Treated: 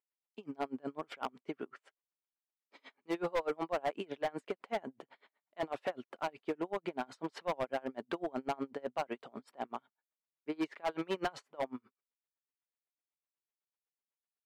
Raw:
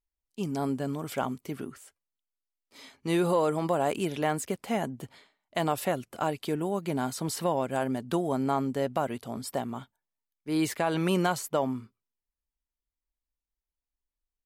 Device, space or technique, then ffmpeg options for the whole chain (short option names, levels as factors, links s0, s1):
helicopter radio: -af "highpass=370,lowpass=2500,aeval=exprs='val(0)*pow(10,-33*(0.5-0.5*cos(2*PI*8*n/s))/20)':c=same,asoftclip=type=hard:threshold=0.0282,volume=1.41"